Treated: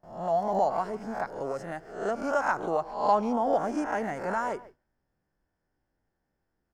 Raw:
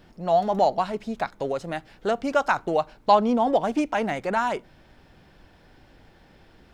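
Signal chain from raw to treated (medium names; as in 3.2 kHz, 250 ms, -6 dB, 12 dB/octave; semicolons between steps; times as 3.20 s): reverse spectral sustain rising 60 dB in 0.58 s; gate with hold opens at -38 dBFS; high-order bell 3.1 kHz -9.5 dB 1.1 oct; band-stop 3.8 kHz, Q 8.1; speakerphone echo 140 ms, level -18 dB; trim -7 dB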